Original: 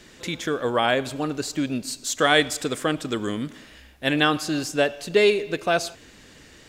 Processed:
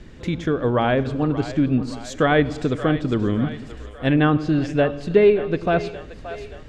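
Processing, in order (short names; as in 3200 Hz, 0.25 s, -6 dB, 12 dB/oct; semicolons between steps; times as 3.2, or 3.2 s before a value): RIAA curve playback; split-band echo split 440 Hz, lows 98 ms, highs 0.576 s, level -13 dB; treble ducked by the level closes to 2500 Hz, closed at -12.5 dBFS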